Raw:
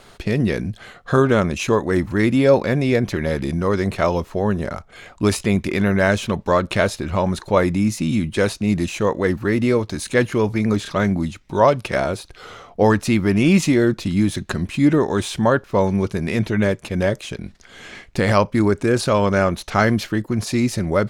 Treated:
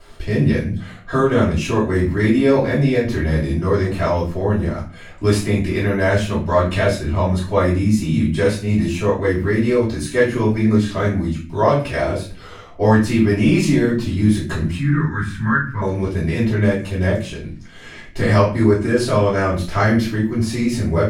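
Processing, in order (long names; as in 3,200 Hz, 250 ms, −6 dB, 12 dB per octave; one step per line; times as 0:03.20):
0:14.78–0:15.82: drawn EQ curve 190 Hz 0 dB, 660 Hz −27 dB, 1,000 Hz −4 dB, 1,500 Hz +9 dB, 2,900 Hz −13 dB
convolution reverb RT60 0.40 s, pre-delay 3 ms, DRR −10.5 dB
level −14 dB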